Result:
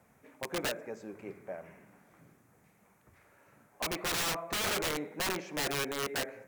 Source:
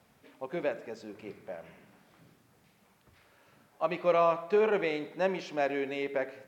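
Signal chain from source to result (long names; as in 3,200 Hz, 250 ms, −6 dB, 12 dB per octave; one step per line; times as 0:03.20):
flat-topped bell 3,800 Hz −10 dB 1.1 octaves
wrap-around overflow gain 27 dB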